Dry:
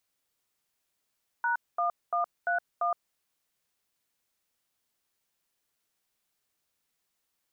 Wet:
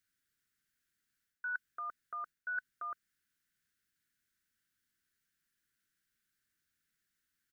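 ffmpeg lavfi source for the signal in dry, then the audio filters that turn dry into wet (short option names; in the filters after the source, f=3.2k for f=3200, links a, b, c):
-f lavfi -i "aevalsrc='0.0422*clip(min(mod(t,0.343),0.117-mod(t,0.343))/0.002,0,1)*(eq(floor(t/0.343),0)*(sin(2*PI*941*mod(t,0.343))+sin(2*PI*1477*mod(t,0.343)))+eq(floor(t/0.343),1)*(sin(2*PI*697*mod(t,0.343))+sin(2*PI*1209*mod(t,0.343)))+eq(floor(t/0.343),2)*(sin(2*PI*697*mod(t,0.343))+sin(2*PI*1209*mod(t,0.343)))+eq(floor(t/0.343),3)*(sin(2*PI*697*mod(t,0.343))+sin(2*PI*1477*mod(t,0.343)))+eq(floor(t/0.343),4)*(sin(2*PI*697*mod(t,0.343))+sin(2*PI*1209*mod(t,0.343))))':d=1.715:s=44100"
-af "firequalizer=gain_entry='entry(210,0);entry(330,-4);entry(780,-30);entry(1500,6);entry(2400,-5)':delay=0.05:min_phase=1,areverse,acompressor=threshold=-36dB:ratio=10,areverse"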